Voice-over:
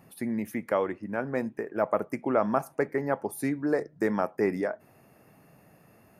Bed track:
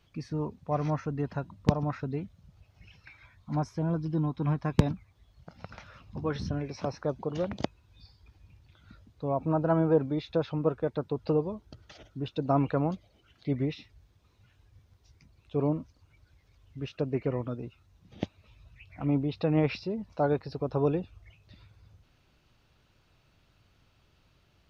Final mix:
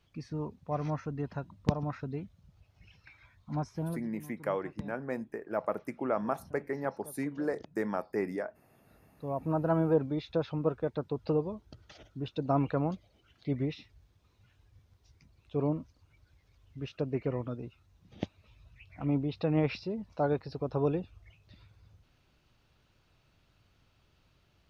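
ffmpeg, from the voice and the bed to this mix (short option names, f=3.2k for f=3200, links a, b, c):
-filter_complex "[0:a]adelay=3750,volume=-6dB[a];[1:a]volume=13dB,afade=t=out:st=3.8:d=0.3:silence=0.16788,afade=t=in:st=8.73:d=0.87:silence=0.141254[b];[a][b]amix=inputs=2:normalize=0"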